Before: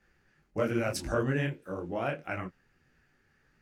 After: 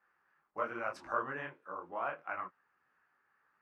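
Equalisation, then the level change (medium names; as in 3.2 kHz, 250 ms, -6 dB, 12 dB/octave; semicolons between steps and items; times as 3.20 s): band-pass filter 1.1 kHz, Q 3.5; +5.5 dB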